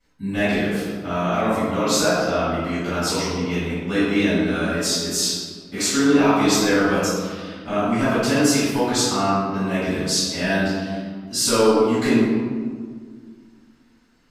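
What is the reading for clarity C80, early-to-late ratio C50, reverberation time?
-0.5 dB, -3.5 dB, 1.8 s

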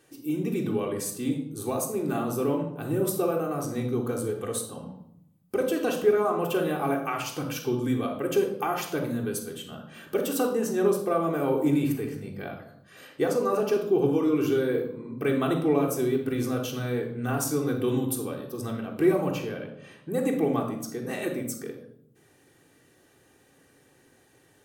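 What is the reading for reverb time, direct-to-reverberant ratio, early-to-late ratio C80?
0.75 s, -0.5 dB, 10.0 dB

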